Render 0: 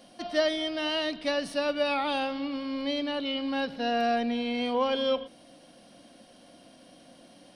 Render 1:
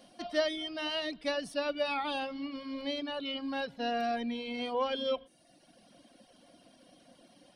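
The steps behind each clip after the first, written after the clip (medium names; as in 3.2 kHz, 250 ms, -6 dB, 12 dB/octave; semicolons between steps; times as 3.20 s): reverb removal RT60 0.98 s; trim -3.5 dB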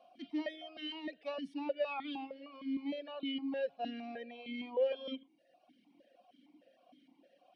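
stepped vowel filter 6.5 Hz; trim +4 dB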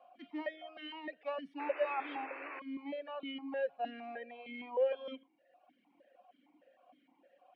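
three-band isolator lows -13 dB, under 570 Hz, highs -22 dB, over 2.2 kHz; band-stop 660 Hz, Q 12; painted sound noise, 1.59–2.60 s, 280–2700 Hz -53 dBFS; trim +6 dB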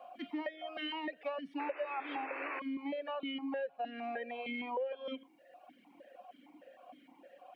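compression 5:1, threshold -46 dBFS, peak gain reduction 17.5 dB; trim +9.5 dB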